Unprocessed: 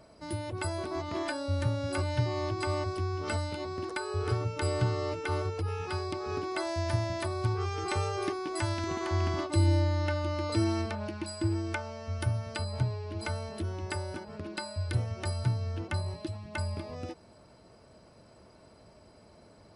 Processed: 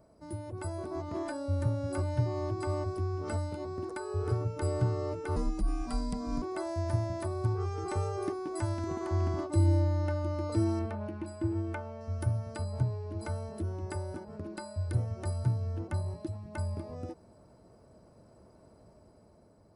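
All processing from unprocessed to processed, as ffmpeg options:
-filter_complex "[0:a]asettb=1/sr,asplit=3[s0][s1][s2];[s0]atrim=end=5.364[s3];[s1]atrim=start=5.36:end=6.42,asetpts=PTS-STARTPTS,afade=t=in:d=0.004:c=qsin,afade=t=out:st=1.056:d=0.004:c=qsin,bass=f=250:g=5,treble=f=4000:g=9,afreqshift=-130[s4];[s2]atrim=start=6.416[s5];[s3][s4]acrossfade=d=0.004:c1=hsin:c2=qsin[s6];[s6][s5]acrossfade=d=0.004:c1=qsin:c2=hsin,asettb=1/sr,asplit=3[s7][s8][s9];[s7]atrim=end=10.794[s10];[s8]atrim=start=10.79:end=12.01,asetpts=PTS-STARTPTS,afade=t=in:d=0.004:c=qsin,afade=t=out:st=1.216:d=0.004:c=qsin,highshelf=f=3900:t=q:w=1.5:g=-6.5,bandreject=f=50:t=h:w=6,bandreject=f=100:t=h:w=6,bandreject=f=150:t=h:w=6,bandreject=f=200:t=h:w=6,bandreject=f=250:t=h:w=6,bandreject=f=300:t=h:w=6,bandreject=f=350:t=h:w=6,bandreject=f=400:t=h:w=6[s11];[s9]atrim=start=12.006[s12];[s10][s11]acrossfade=d=0.004:c1=hsin:c2=qsin[s13];[s13][s12]acrossfade=d=0.004:c1=qsin:c2=hsin,equalizer=f=3100:w=0.61:g=-15,dynaudnorm=f=140:g=11:m=1.5,volume=0.668"

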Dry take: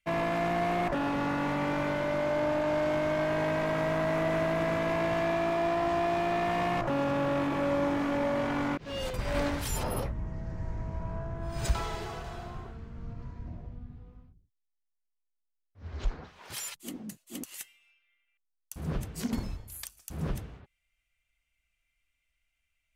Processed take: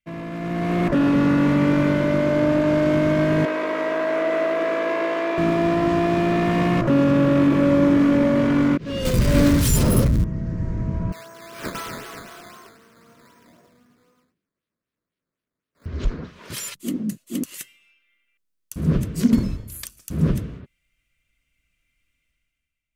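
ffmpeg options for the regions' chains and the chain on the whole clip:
-filter_complex "[0:a]asettb=1/sr,asplit=3[s0][s1][s2];[s0]atrim=end=3.454[s3];[s1]atrim=start=3.45:end=5.38,asetpts=PTS-STARTPTS,afade=t=in:d=0.004:c=qsin,afade=t=out:st=1.926:d=0.004:c=qsin,highpass=f=370:w=0.5412,highpass=f=370:w=1.3066,aemphasis=mode=reproduction:type=cd,asplit=2[s4][s5];[s5]adelay=20,volume=0.282[s6];[s4][s6]amix=inputs=2:normalize=0,atrim=end_sample=85113[s7];[s2]atrim=start=5.376[s8];[s3][s7]acrossfade=d=0.004:c1=hsin:c2=qsin[s9];[s9][s8]acrossfade=d=0.004:c1=qsin:c2=hsin,asettb=1/sr,asplit=3[s10][s11][s12];[s10]atrim=end=9.054[s13];[s11]atrim=start=9.05:end=10.24,asetpts=PTS-STARTPTS,afade=t=in:d=0.004:c=qsin,afade=t=out:st=1.186:d=0.004:c=qsin,aeval=exprs='val(0)+0.5*0.0224*sgn(val(0))':c=same,bass=f=250:g=5,treble=f=4000:g=6[s14];[s12]atrim=start=10.236[s15];[s13][s14]acrossfade=d=0.004:c1=hsin:c2=qsin[s16];[s16][s15]acrossfade=d=0.004:c1=qsin:c2=hsin,asettb=1/sr,asplit=3[s17][s18][s19];[s17]atrim=end=11.124[s20];[s18]atrim=start=11.12:end=15.86,asetpts=PTS-STARTPTS,afade=t=in:d=0.004:c=qsin,afade=t=out:st=4.736:d=0.004:c=qsin,highpass=840,acrusher=samples=11:mix=1:aa=0.000001:lfo=1:lforange=11:lforate=3.9[s21];[s19]atrim=start=15.856[s22];[s20][s21]acrossfade=d=0.004:c1=hsin:c2=qsin[s23];[s23][s22]acrossfade=d=0.004:c1=qsin:c2=hsin,equalizer=f=800:w=4.5:g=-13.5,dynaudnorm=f=100:g=13:m=4.73,equalizer=f=210:w=0.58:g=10,volume=0.447"

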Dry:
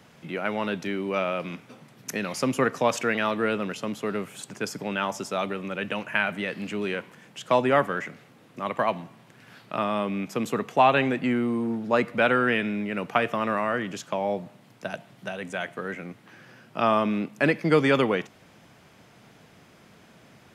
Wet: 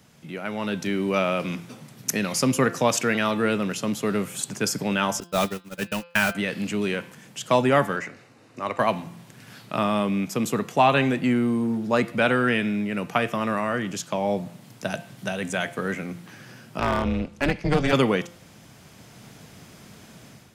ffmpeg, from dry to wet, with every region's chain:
-filter_complex "[0:a]asettb=1/sr,asplit=3[s0][s1][s2];[s0]atrim=end=5.204[s3];[s1]atrim=start=5.2:end=6.35,asetpts=PTS-STARTPTS,afade=t=in:d=0.004:c=qsin,afade=t=out:st=1.146:d=0.004:c=qsin,aeval=exprs='val(0)+0.5*0.0299*sgn(val(0))':c=same,bandreject=f=2200:w=20,agate=range=0.00224:threshold=0.0447:ratio=16:release=100:detection=peak[s4];[s2]atrim=start=6.346[s5];[s3][s4]acrossfade=d=0.004:c1=hsin:c2=qsin[s6];[s6][s5]acrossfade=d=0.004:c1=qsin:c2=hsin,asettb=1/sr,asplit=3[s7][s8][s9];[s7]atrim=end=7.964[s10];[s8]atrim=start=7.96:end=8.8,asetpts=PTS-STARTPTS,afade=t=in:d=0.004:c=qsin,afade=t=out:st=0.836:d=0.004:c=qsin,equalizer=f=170:w=2.1:g=-13,bandreject=f=3300:w=5.9,adynamicsmooth=sensitivity=4.5:basefreq=7200[s11];[s9]atrim=start=8.796[s12];[s10][s11]acrossfade=d=0.004:c1=hsin:c2=qsin[s13];[s13][s12]acrossfade=d=0.004:c1=qsin:c2=hsin,asettb=1/sr,asplit=3[s14][s15][s16];[s14]atrim=end=16.794[s17];[s15]atrim=start=16.79:end=17.93,asetpts=PTS-STARTPTS,afade=t=in:d=0.004:c=qsin,afade=t=out:st=1.136:d=0.004:c=qsin,lowpass=7300,aeval=exprs='clip(val(0),-1,0.15)':c=same,tremolo=f=290:d=0.947[s18];[s16]atrim=start=17.926[s19];[s17][s18]acrossfade=d=0.004:c1=hsin:c2=qsin[s20];[s20][s19]acrossfade=d=0.004:c1=qsin:c2=hsin,bass=f=250:g=6,treble=f=4000:g=9,bandreject=f=172.6:t=h:w=4,bandreject=f=345.2:t=h:w=4,bandreject=f=517.8:t=h:w=4,bandreject=f=690.4:t=h:w=4,bandreject=f=863:t=h:w=4,bandreject=f=1035.6:t=h:w=4,bandreject=f=1208.2:t=h:w=4,bandreject=f=1380.8:t=h:w=4,bandreject=f=1553.4:t=h:w=4,bandreject=f=1726:t=h:w=4,bandreject=f=1898.6:t=h:w=4,bandreject=f=2071.2:t=h:w=4,bandreject=f=2243.8:t=h:w=4,bandreject=f=2416.4:t=h:w=4,bandreject=f=2589:t=h:w=4,bandreject=f=2761.6:t=h:w=4,bandreject=f=2934.2:t=h:w=4,bandreject=f=3106.8:t=h:w=4,bandreject=f=3279.4:t=h:w=4,bandreject=f=3452:t=h:w=4,bandreject=f=3624.6:t=h:w=4,bandreject=f=3797.2:t=h:w=4,bandreject=f=3969.8:t=h:w=4,bandreject=f=4142.4:t=h:w=4,bandreject=f=4315:t=h:w=4,bandreject=f=4487.6:t=h:w=4,bandreject=f=4660.2:t=h:w=4,bandreject=f=4832.8:t=h:w=4,bandreject=f=5005.4:t=h:w=4,bandreject=f=5178:t=h:w=4,dynaudnorm=f=520:g=3:m=2.82,volume=0.562"

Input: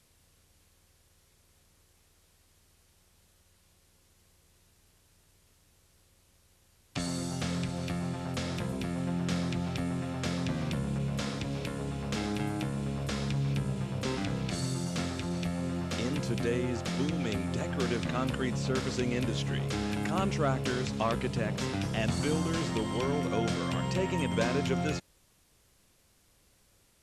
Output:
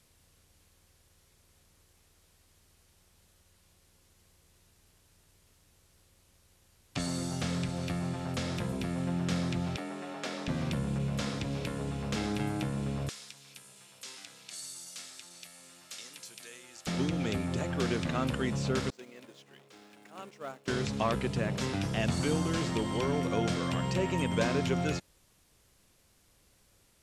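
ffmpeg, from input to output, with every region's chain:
-filter_complex "[0:a]asettb=1/sr,asplit=3[s0][s1][s2];[s0]atrim=end=9.764[s3];[s1]atrim=start=9.76:end=10.48,asetpts=PTS-STARTPTS,afade=t=in:d=0.004:c=qsin,afade=t=out:st=0.716:d=0.004:c=qsin,highpass=340,highshelf=f=5900:g=-5.5,afreqshift=27[s4];[s2]atrim=start=10.476[s5];[s3][s4]acrossfade=d=0.004:c1=hsin:c2=qsin[s6];[s6][s5]acrossfade=d=0.004:c1=qsin:c2=hsin,asettb=1/sr,asplit=3[s7][s8][s9];[s7]atrim=end=13.094[s10];[s8]atrim=start=13.09:end=16.87,asetpts=PTS-STARTPTS,afade=t=in:d=0.004:c=qsin,afade=t=out:st=3.776:d=0.004:c=qsin,highpass=46,aderivative[s11];[s9]atrim=start=16.866[s12];[s10][s11]acrossfade=d=0.004:c1=hsin:c2=qsin[s13];[s13][s12]acrossfade=d=0.004:c1=qsin:c2=hsin,asettb=1/sr,asplit=3[s14][s15][s16];[s14]atrim=end=18.904[s17];[s15]atrim=start=18.9:end=20.68,asetpts=PTS-STARTPTS,afade=t=in:d=0.004:c=qsin,afade=t=out:st=1.776:d=0.004:c=qsin,aeval=exprs='val(0)+0.5*0.0141*sgn(val(0))':c=same,agate=range=0.0224:threshold=0.126:ratio=3:release=100:detection=peak,highpass=330[s18];[s16]atrim=start=20.676[s19];[s17][s18]acrossfade=d=0.004:c1=hsin:c2=qsin[s20];[s20][s19]acrossfade=d=0.004:c1=qsin:c2=hsin"

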